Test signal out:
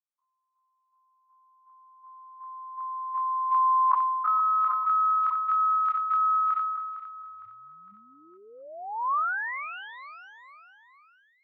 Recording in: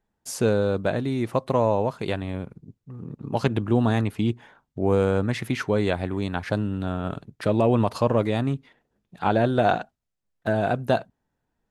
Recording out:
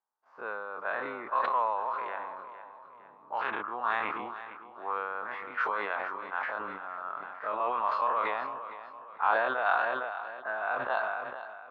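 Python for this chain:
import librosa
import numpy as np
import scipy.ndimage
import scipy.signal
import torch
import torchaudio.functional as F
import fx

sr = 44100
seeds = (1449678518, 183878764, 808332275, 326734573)

p1 = fx.spec_dilate(x, sr, span_ms=60)
p2 = fx.ladder_bandpass(p1, sr, hz=1300.0, resonance_pct=55)
p3 = fx.env_lowpass(p2, sr, base_hz=850.0, full_db=-26.0)
p4 = p3 + fx.echo_feedback(p3, sr, ms=458, feedback_pct=45, wet_db=-12.5, dry=0)
p5 = fx.sustainer(p4, sr, db_per_s=29.0)
y = p5 * librosa.db_to_amplitude(4.0)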